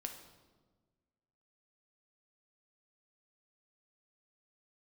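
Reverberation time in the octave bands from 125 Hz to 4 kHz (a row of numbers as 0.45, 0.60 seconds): 1.7, 1.8, 1.5, 1.2, 0.95, 0.95 seconds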